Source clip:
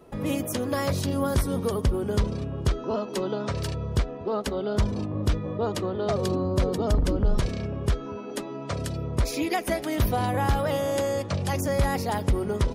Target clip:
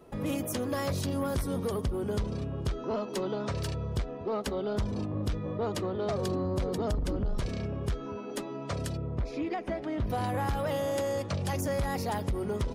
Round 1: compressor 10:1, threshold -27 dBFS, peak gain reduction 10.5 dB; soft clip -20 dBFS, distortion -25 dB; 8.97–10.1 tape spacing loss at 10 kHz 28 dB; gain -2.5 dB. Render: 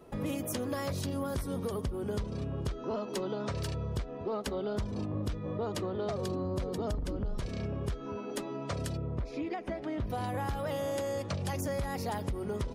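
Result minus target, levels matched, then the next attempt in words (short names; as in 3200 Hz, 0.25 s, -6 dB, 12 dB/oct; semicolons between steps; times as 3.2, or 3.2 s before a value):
compressor: peak gain reduction +5.5 dB
compressor 10:1, threshold -21 dBFS, peak gain reduction 5 dB; soft clip -20 dBFS, distortion -19 dB; 8.97–10.1 tape spacing loss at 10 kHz 28 dB; gain -2.5 dB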